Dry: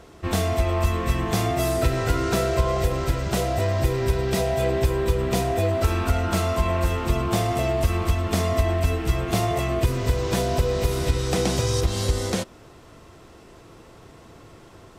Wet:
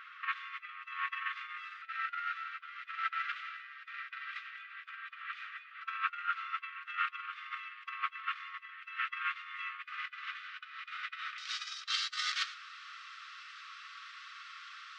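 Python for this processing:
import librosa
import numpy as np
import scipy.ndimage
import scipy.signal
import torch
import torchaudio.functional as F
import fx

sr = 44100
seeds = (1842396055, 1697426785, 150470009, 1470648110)

y = fx.lowpass(x, sr, hz=fx.steps((0.0, 2700.0), (11.38, 4700.0)), slope=24)
y = y + 10.0 ** (-20.0 / 20.0) * np.pad(y, (int(111 * sr / 1000.0), 0))[:len(y)]
y = fx.over_compress(y, sr, threshold_db=-28.0, ratio=-0.5)
y = fx.brickwall_highpass(y, sr, low_hz=1100.0)
y = y * 10.0 ** (1.0 / 20.0)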